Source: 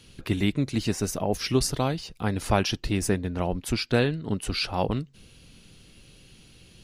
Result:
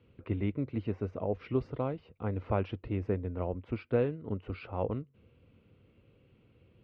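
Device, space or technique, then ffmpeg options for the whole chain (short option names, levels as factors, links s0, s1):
bass cabinet: -af "highpass=71,equalizer=f=93:t=q:w=4:g=6,equalizer=f=170:t=q:w=4:g=-5,equalizer=f=490:t=q:w=4:g=6,equalizer=f=790:t=q:w=4:g=-4,equalizer=f=1700:t=q:w=4:g=-10,lowpass=f=2100:w=0.5412,lowpass=f=2100:w=1.3066,volume=0.422"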